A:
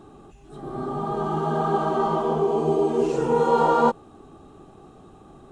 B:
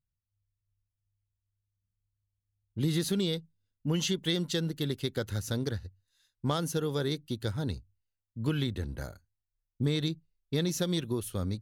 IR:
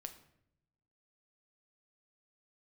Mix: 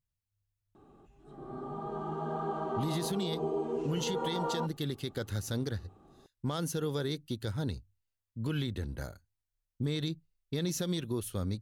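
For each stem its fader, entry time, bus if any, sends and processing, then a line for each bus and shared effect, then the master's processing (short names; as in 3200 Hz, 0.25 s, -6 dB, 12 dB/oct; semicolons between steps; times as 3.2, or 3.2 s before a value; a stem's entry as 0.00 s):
-11.5 dB, 0.75 s, no send, high shelf 3600 Hz -8 dB
-1.0 dB, 0.00 s, no send, dry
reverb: off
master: limiter -24 dBFS, peak gain reduction 9 dB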